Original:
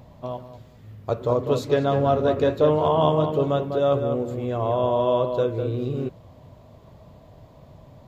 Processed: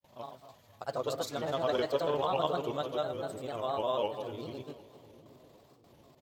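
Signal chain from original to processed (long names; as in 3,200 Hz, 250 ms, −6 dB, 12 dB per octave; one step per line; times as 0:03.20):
tempo change 1.3×
spectral tilt +3.5 dB per octave
granular cloud 100 ms, grains 20 per second, spray 100 ms, pitch spread up and down by 3 semitones
noise gate with hold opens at −46 dBFS
on a send: echo with a time of its own for lows and highs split 400 Hz, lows 757 ms, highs 250 ms, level −15.5 dB
on the sum: level −7 dB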